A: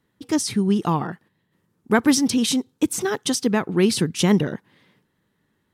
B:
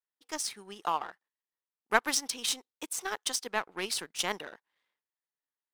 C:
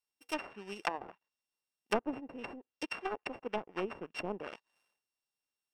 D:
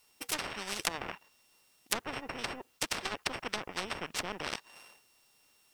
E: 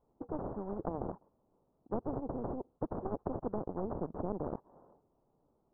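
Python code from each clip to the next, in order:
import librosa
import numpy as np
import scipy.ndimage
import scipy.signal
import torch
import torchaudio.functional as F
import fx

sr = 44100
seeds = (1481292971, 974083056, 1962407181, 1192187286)

y1 = scipy.signal.sosfilt(scipy.signal.cheby1(2, 1.0, 810.0, 'highpass', fs=sr, output='sos'), x)
y1 = fx.power_curve(y1, sr, exponent=1.4)
y2 = np.r_[np.sort(y1[:len(y1) // 16 * 16].reshape(-1, 16), axis=1).ravel(), y1[len(y1) // 16 * 16:]]
y2 = fx.env_lowpass_down(y2, sr, base_hz=520.0, full_db=-29.0)
y2 = F.gain(torch.from_numpy(y2), 2.5).numpy()
y3 = fx.notch(y2, sr, hz=1600.0, q=21.0)
y3 = fx.spectral_comp(y3, sr, ratio=4.0)
y3 = F.gain(torch.from_numpy(y3), 6.5).numpy()
y4 = scipy.ndimage.gaussian_filter1d(y3, 12.0, mode='constant')
y4 = F.gain(torch.from_numpy(y4), 8.0).numpy()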